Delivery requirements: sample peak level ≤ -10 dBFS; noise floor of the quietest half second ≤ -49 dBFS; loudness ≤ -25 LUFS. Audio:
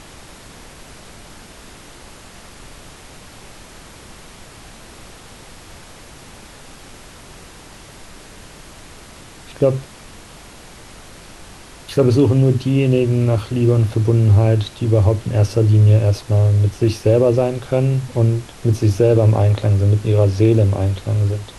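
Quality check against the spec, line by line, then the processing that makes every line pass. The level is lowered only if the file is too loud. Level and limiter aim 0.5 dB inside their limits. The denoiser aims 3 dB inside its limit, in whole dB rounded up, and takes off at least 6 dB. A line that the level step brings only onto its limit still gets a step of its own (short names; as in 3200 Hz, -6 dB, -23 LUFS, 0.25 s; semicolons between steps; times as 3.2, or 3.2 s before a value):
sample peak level -4.0 dBFS: fail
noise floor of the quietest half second -40 dBFS: fail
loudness -16.0 LUFS: fail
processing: gain -9.5 dB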